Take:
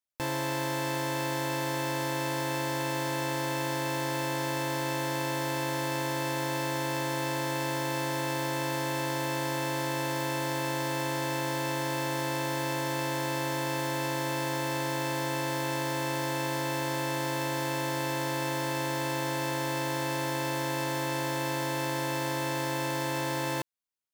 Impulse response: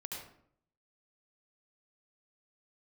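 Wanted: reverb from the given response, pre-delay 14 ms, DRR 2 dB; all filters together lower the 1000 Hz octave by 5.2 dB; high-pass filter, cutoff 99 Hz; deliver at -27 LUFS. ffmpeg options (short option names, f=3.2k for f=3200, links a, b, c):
-filter_complex "[0:a]highpass=99,equalizer=f=1k:t=o:g=-6,asplit=2[a][b];[1:a]atrim=start_sample=2205,adelay=14[c];[b][c]afir=irnorm=-1:irlink=0,volume=-1dB[d];[a][d]amix=inputs=2:normalize=0,volume=4dB"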